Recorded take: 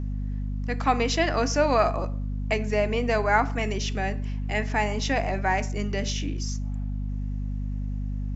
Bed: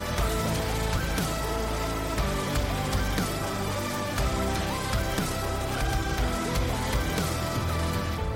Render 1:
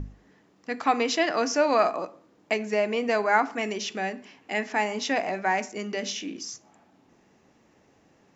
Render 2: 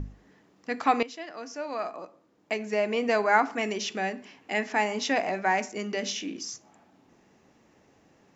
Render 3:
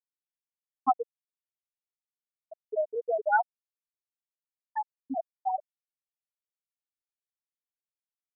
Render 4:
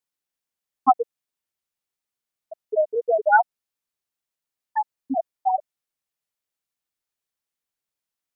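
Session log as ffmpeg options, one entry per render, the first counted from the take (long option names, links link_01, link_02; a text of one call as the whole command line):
ffmpeg -i in.wav -af "bandreject=frequency=50:width_type=h:width=6,bandreject=frequency=100:width_type=h:width=6,bandreject=frequency=150:width_type=h:width=6,bandreject=frequency=200:width_type=h:width=6,bandreject=frequency=250:width_type=h:width=6" out.wav
ffmpeg -i in.wav -filter_complex "[0:a]asplit=2[link_01][link_02];[link_01]atrim=end=1.03,asetpts=PTS-STARTPTS,afade=type=out:start_time=1.026:duration=0.004:curve=hsin:silence=0.158489[link_03];[link_02]atrim=start=1.03,asetpts=PTS-STARTPTS,afade=type=in:duration=2:curve=qua:silence=0.158489[link_04];[link_03][link_04]concat=n=2:v=0:a=1" out.wav
ffmpeg -i in.wav -af "afftfilt=real='re*gte(hypot(re,im),0.501)':imag='im*gte(hypot(re,im),0.501)':win_size=1024:overlap=0.75" out.wav
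ffmpeg -i in.wav -af "volume=8dB" out.wav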